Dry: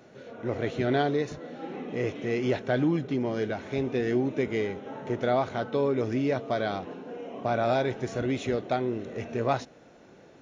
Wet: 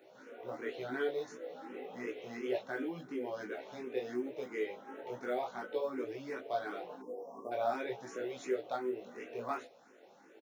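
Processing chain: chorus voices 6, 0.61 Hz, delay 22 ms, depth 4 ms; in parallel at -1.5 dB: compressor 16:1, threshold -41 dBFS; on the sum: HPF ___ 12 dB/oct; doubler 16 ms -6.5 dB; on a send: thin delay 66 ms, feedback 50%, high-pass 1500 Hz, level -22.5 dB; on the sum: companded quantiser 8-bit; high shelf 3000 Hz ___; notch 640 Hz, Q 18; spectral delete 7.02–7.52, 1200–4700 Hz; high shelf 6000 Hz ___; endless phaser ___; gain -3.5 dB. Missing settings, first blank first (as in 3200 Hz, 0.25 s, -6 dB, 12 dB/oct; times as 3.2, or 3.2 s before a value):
370 Hz, -10.5 dB, +11 dB, +2.8 Hz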